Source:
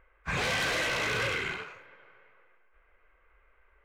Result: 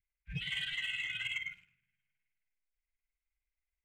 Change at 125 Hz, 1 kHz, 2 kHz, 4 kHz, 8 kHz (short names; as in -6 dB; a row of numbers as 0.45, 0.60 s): -8.0, -28.5, -8.0, -4.0, -17.0 dB